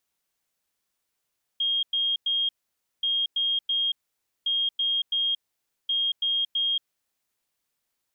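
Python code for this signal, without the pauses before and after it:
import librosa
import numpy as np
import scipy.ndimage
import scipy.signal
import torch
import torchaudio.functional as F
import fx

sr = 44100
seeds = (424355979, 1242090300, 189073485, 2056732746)

y = fx.beep_pattern(sr, wave='sine', hz=3240.0, on_s=0.23, off_s=0.1, beeps=3, pause_s=0.54, groups=4, level_db=-22.0)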